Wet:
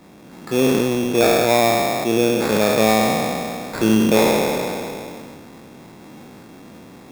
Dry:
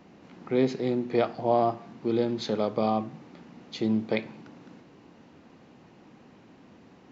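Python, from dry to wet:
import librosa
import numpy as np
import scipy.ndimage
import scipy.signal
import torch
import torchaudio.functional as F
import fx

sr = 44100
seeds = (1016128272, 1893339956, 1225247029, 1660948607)

p1 = fx.spec_trails(x, sr, decay_s=2.14)
p2 = fx.rider(p1, sr, range_db=10, speed_s=2.0)
p3 = p1 + (p2 * 10.0 ** (2.0 / 20.0))
p4 = fx.sample_hold(p3, sr, seeds[0], rate_hz=3000.0, jitter_pct=0)
p5 = fx.sustainer(p4, sr, db_per_s=22.0)
y = p5 * 10.0 ** (-1.5 / 20.0)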